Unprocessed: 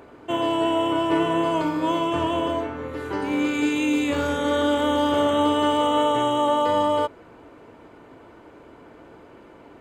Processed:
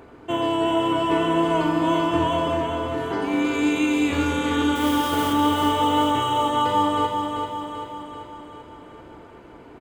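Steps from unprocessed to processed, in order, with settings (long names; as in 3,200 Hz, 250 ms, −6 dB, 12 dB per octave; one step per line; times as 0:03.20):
low-shelf EQ 110 Hz +6.5 dB
notch filter 580 Hz, Q 12
0:04.75–0:05.33: noise that follows the level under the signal 16 dB
repeating echo 388 ms, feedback 56%, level −5.5 dB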